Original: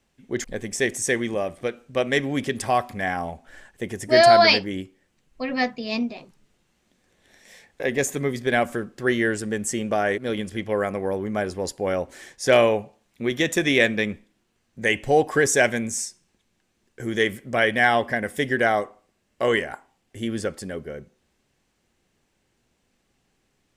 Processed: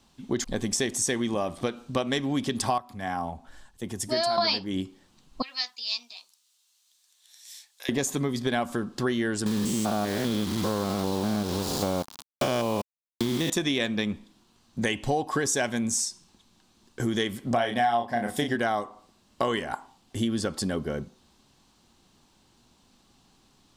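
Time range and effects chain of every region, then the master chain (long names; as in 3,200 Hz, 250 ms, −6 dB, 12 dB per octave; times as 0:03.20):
0:02.78–0:04.38: high-shelf EQ 6,300 Hz +7 dB + downward compressor 1.5 to 1, threshold −49 dBFS + multiband upward and downward expander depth 70%
0:05.42–0:07.89: high-pass filter 1,300 Hz 6 dB per octave + first difference
0:09.46–0:13.50: spectrum averaged block by block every 200 ms + parametric band 130 Hz +4.5 dB 2.1 octaves + bit-depth reduction 6 bits, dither none
0:17.47–0:18.56: high-pass filter 59 Hz + parametric band 720 Hz +9.5 dB 0.37 octaves + double-tracking delay 34 ms −5.5 dB
whole clip: octave-band graphic EQ 250/500/1,000/2,000/4,000 Hz +4/−6/+8/−9/+8 dB; downward compressor 5 to 1, threshold −31 dBFS; level +6.5 dB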